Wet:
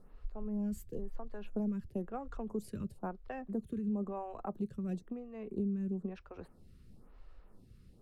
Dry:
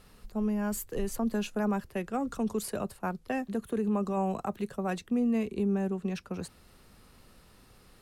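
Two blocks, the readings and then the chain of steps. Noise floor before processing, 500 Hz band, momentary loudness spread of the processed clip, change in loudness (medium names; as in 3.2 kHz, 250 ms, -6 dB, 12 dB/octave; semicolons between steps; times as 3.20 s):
-59 dBFS, -9.0 dB, 10 LU, -7.5 dB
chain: tilt EQ -3 dB/octave; compression 6:1, threshold -24 dBFS, peak gain reduction 11 dB; lamp-driven phase shifter 1 Hz; trim -6.5 dB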